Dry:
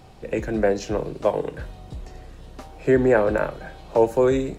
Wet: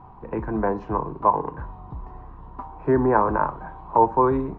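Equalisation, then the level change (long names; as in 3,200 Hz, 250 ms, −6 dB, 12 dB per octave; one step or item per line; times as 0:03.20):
low-pass with resonance 1,000 Hz, resonance Q 8
parametric band 560 Hz −11 dB 0.71 octaves
0.0 dB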